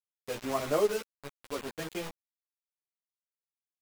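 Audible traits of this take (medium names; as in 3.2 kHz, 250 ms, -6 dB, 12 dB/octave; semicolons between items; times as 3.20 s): random-step tremolo 3.5 Hz; a quantiser's noise floor 6-bit, dither none; a shimmering, thickened sound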